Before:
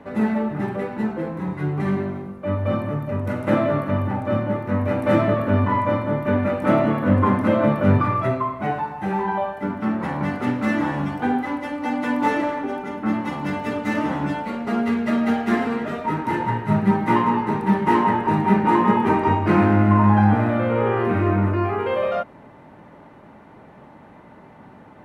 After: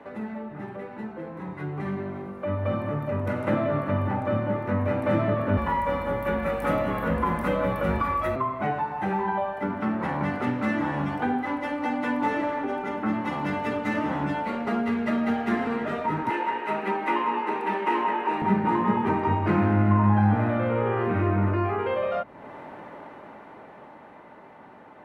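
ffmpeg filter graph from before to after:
-filter_complex "[0:a]asettb=1/sr,asplit=3[a][b][c];[a]atrim=end=5.574[d];[b]atrim=start=5.57:end=8.36,asetpts=PTS-STARTPTS,afade=t=in:d=0.004:c=qsin,afade=t=out:st=2.786:d=0.004:c=qsin,aemphasis=mode=production:type=bsi,afreqshift=-29,aeval=exprs='val(0)+0.0158*(sin(2*PI*50*n/s)+sin(2*PI*2*50*n/s)/2+sin(2*PI*3*50*n/s)/3+sin(2*PI*4*50*n/s)/4+sin(2*PI*5*50*n/s)/5)':c=same[e];[c]atrim=start=8.356[f];[d][e]acrossfade=d=0.004:c1=hsin:c2=qsin[g];[g][f]acrossfade=d=0.004:c1=qsin:c2=hsin,asettb=1/sr,asplit=3[h][i][j];[h]atrim=end=16.304[k];[i]atrim=start=16.3:end=18.42,asetpts=PTS-STARTPTS,afade=t=in:d=0.004:c=qsin,afade=t=out:st=2.116:d=0.004:c=qsin,highpass=f=300:w=0.5412,highpass=f=300:w=1.3066,equalizer=f=2.6k:t=o:w=0.42:g=8[l];[j]atrim=start=18.416[m];[k][l]acrossfade=d=0.004:c1=hsin:c2=qsin[n];[n][m]acrossfade=d=0.004:c1=qsin:c2=hsin,acrossover=split=180[o][p];[p]acompressor=threshold=-39dB:ratio=2.5[q];[o][q]amix=inputs=2:normalize=0,bass=f=250:g=-12,treble=f=4k:g=-6,dynaudnorm=f=140:g=31:m=9dB"

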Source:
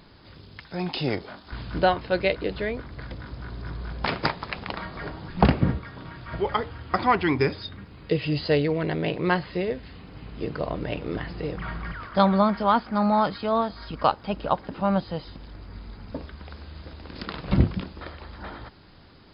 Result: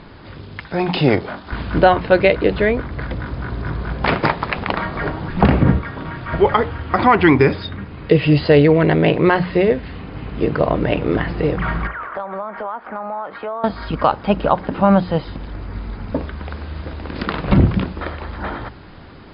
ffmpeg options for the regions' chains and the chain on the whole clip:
-filter_complex "[0:a]asettb=1/sr,asplit=3[a][b][c];[a]atrim=end=11.874[d];[b]atrim=start=11.87:end=13.64,asetpts=PTS-STARTPTS,afade=t=in:d=0.004:c=qsin,afade=t=out:st=1.766:d=0.004:c=qsin,acrossover=split=390 2400:gain=0.1 1 0.0794[e][f][g];[e][f][g]amix=inputs=3:normalize=0,acompressor=threshold=-36dB:ratio=6:attack=3.2:release=140:knee=1:detection=peak[h];[c]atrim=start=13.636[i];[d][h]acrossfade=d=0.004:c1=hsin:c2=qsin[j];[j][i]acrossfade=d=0.004:c1=qsin:c2=hsin,lowpass=2.8k,bandreject=f=60:t=h:w=6,bandreject=f=120:t=h:w=6,bandreject=f=180:t=h:w=6,alimiter=level_in=13.5dB:limit=-1dB:release=50:level=0:latency=1,volume=-1dB"

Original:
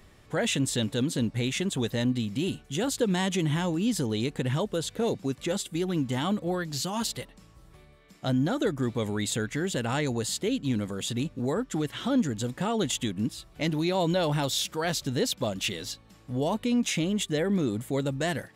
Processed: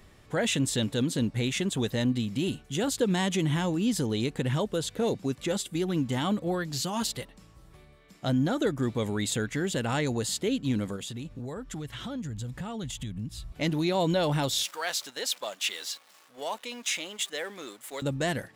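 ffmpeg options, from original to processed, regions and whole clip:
-filter_complex "[0:a]asettb=1/sr,asplit=3[a][b][c];[a]atrim=end=10.964[d];[b]atrim=start=10.96:end=13.52,asetpts=PTS-STARTPTS,afade=t=in:d=0.004:c=qsin,afade=t=out:st=2.556:d=0.004:c=qsin,asubboost=boost=11.5:cutoff=130,acompressor=threshold=-36dB:ratio=3:attack=3.2:release=140:knee=1:detection=peak[e];[c]atrim=start=13.516[f];[d][e]acrossfade=d=0.004:c1=hsin:c2=qsin[g];[g][f]acrossfade=d=0.004:c1=qsin:c2=hsin,asettb=1/sr,asplit=3[h][i][j];[h]atrim=end=14.634[k];[i]atrim=start=14.63:end=18.02,asetpts=PTS-STARTPTS,afade=t=in:d=0.004:c=qsin,afade=t=out:st=3.386:d=0.004:c=qsin,aeval=exprs='val(0)+0.5*0.0075*sgn(val(0))':c=same,highpass=800,agate=range=-7dB:threshold=-45dB:ratio=16:release=100:detection=peak[l];[j]atrim=start=18.016[m];[k][l]acrossfade=d=0.004:c1=hsin:c2=qsin[n];[n][m]acrossfade=d=0.004:c1=qsin:c2=hsin"

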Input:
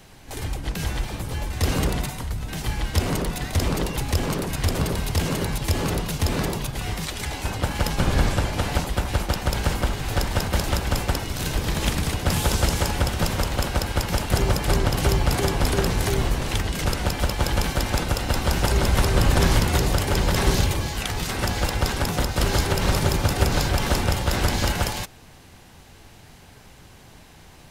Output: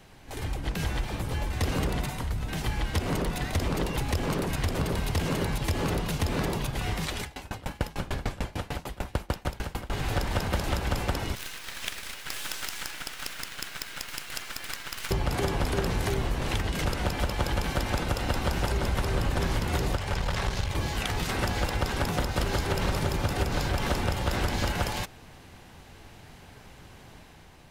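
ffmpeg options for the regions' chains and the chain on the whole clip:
-filter_complex "[0:a]asettb=1/sr,asplit=3[a][b][c];[a]atrim=end=7.214[d];[b]atrim=start=7.21:end=9.92,asetpts=PTS-STARTPTS,afade=t=in:d=0.004:c=qsin,afade=t=out:st=2.706:d=0.004:c=qsin,highshelf=f=11k:g=4.5,aeval=exprs='val(0)*pow(10,-27*if(lt(mod(6.7*n/s,1),2*abs(6.7)/1000),1-mod(6.7*n/s,1)/(2*abs(6.7)/1000),(mod(6.7*n/s,1)-2*abs(6.7)/1000)/(1-2*abs(6.7)/1000))/20)':c=same[e];[c]atrim=start=9.916[f];[d][e]acrossfade=d=0.004:c1=hsin:c2=qsin[g];[g][f]acrossfade=d=0.004:c1=qsin:c2=hsin,asettb=1/sr,asplit=3[h][i][j];[h]atrim=end=11.354[k];[i]atrim=start=11.35:end=15.11,asetpts=PTS-STARTPTS,afade=t=in:d=0.004:c=qsin,afade=t=out:st=3.756:d=0.004:c=qsin,highpass=f=1.4k:w=0.5412,highpass=f=1.4k:w=1.3066,acrusher=bits=4:dc=4:mix=0:aa=0.000001[l];[j]atrim=start=15.106[m];[k][l]acrossfade=d=0.004:c1=hsin:c2=qsin[n];[n][m]acrossfade=d=0.004:c1=qsin:c2=hsin,asettb=1/sr,asplit=3[o][p][q];[o]atrim=end=19.964[r];[p]atrim=start=19.96:end=20.75,asetpts=PTS-STARTPTS,afade=t=in:d=0.004:c=qsin,afade=t=out:st=0.786:d=0.004:c=qsin,acrossover=split=8500[s][t];[t]acompressor=threshold=-44dB:ratio=4:attack=1:release=60[u];[s][u]amix=inputs=2:normalize=0,equalizer=f=300:w=1.3:g=-10.5,aeval=exprs='(tanh(4.47*val(0)+0.6)-tanh(0.6))/4.47':c=same[v];[q]atrim=start=20.746[w];[r][v]acrossfade=d=0.004:c1=hsin:c2=qsin[x];[x][w]acrossfade=d=0.004:c1=qsin:c2=hsin,acompressor=threshold=-22dB:ratio=6,bass=f=250:g=-1,treble=f=4k:g=-5,dynaudnorm=f=110:g=9:m=3dB,volume=-3.5dB"

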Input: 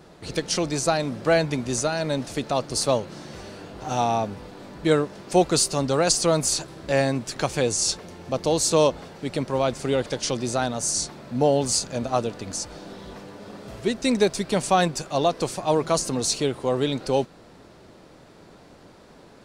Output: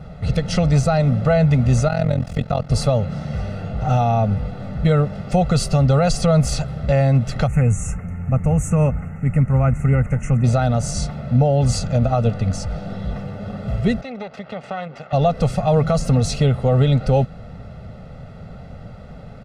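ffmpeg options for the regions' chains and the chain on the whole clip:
-filter_complex "[0:a]asettb=1/sr,asplit=3[a][b][c];[a]atrim=end=1.884[d];[b]atrim=start=1.88:end=2.7,asetpts=PTS-STARTPTS,afade=t=in:d=0.004:c=qsin,afade=t=out:st=0.816:d=0.004:c=qsin,aeval=exprs='sgn(val(0))*max(abs(val(0))-0.00376,0)':c=same,tremolo=f=43:d=0.919[e];[c]atrim=start=2.696[f];[d][e]acrossfade=d=0.004:c1=hsin:c2=qsin[g];[g][f]acrossfade=d=0.004:c1=qsin:c2=hsin,asettb=1/sr,asplit=3[h][i][j];[h]atrim=end=7.474[k];[i]atrim=start=7.47:end=10.44,asetpts=PTS-STARTPTS,afade=t=in:d=0.004:c=qsin,afade=t=out:st=2.966:d=0.004:c=qsin,asuperstop=centerf=4100:order=8:qfactor=0.96,equalizer=f=590:w=1.2:g=-11.5[l];[j]atrim=start=10.436[m];[k][l]acrossfade=d=0.004:c1=hsin:c2=qsin[n];[n][m]acrossfade=d=0.004:c1=qsin:c2=hsin,asettb=1/sr,asplit=3[o][p][q];[o]atrim=end=14.014[r];[p]atrim=start=14.01:end=15.13,asetpts=PTS-STARTPTS,afade=t=in:d=0.004:c=qsin,afade=t=out:st=1.116:d=0.004:c=qsin,acompressor=threshold=-27dB:ratio=5:attack=3.2:release=140:knee=1:detection=peak,aeval=exprs='max(val(0),0)':c=same,highpass=320,lowpass=3.4k[s];[q]atrim=start=15.126[t];[r][s]acrossfade=d=0.004:c1=hsin:c2=qsin[u];[u][t]acrossfade=d=0.004:c1=qsin:c2=hsin,bass=f=250:g=13,treble=f=4k:g=-13,aecho=1:1:1.5:0.9,alimiter=limit=-11dB:level=0:latency=1:release=91,volume=3.5dB"

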